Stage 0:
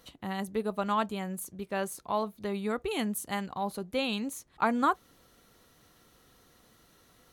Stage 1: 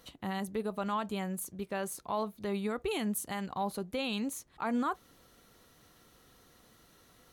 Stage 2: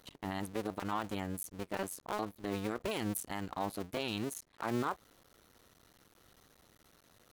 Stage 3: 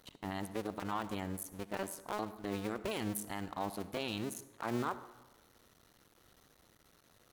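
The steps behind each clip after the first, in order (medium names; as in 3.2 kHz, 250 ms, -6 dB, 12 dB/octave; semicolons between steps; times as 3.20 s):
peak limiter -24 dBFS, peak gain reduction 11 dB
cycle switcher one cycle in 2, muted
reverberation RT60 1.1 s, pre-delay 53 ms, DRR 14 dB; trim -1.5 dB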